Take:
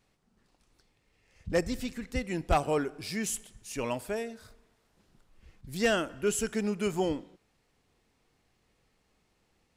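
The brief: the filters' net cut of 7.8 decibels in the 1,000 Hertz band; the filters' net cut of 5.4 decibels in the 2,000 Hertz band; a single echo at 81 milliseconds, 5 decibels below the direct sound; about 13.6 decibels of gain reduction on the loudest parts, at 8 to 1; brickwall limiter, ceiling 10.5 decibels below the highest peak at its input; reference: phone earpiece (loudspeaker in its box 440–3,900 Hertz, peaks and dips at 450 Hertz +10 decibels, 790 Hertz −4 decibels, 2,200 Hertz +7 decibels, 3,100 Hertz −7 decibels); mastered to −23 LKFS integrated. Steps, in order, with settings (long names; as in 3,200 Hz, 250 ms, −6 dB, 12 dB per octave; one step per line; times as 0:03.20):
parametric band 1,000 Hz −7 dB
parametric band 2,000 Hz −7 dB
downward compressor 8 to 1, threshold −37 dBFS
brickwall limiter −38 dBFS
loudspeaker in its box 440–3,900 Hz, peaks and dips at 450 Hz +10 dB, 790 Hz −4 dB, 2,200 Hz +7 dB, 3,100 Hz −7 dB
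single-tap delay 81 ms −5 dB
level +24 dB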